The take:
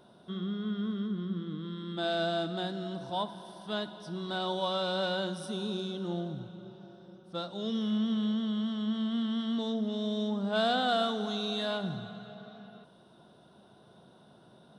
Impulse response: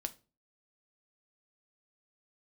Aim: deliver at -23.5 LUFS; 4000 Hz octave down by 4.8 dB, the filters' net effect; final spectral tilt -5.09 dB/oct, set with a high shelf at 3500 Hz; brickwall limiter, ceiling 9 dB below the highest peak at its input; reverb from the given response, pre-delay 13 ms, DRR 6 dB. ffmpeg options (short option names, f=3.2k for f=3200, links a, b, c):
-filter_complex "[0:a]highshelf=f=3.5k:g=3,equalizer=f=4k:t=o:g=-7.5,alimiter=level_in=3dB:limit=-24dB:level=0:latency=1,volume=-3dB,asplit=2[a][b];[1:a]atrim=start_sample=2205,adelay=13[c];[b][c]afir=irnorm=-1:irlink=0,volume=-5dB[d];[a][d]amix=inputs=2:normalize=0,volume=10.5dB"